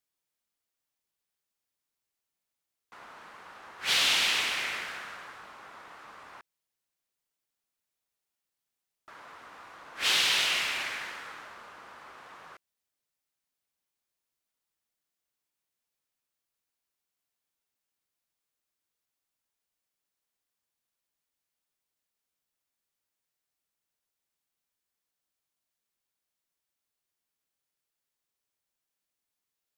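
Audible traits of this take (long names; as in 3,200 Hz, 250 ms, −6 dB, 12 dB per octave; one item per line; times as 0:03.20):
background noise floor −87 dBFS
spectral slope −0.5 dB per octave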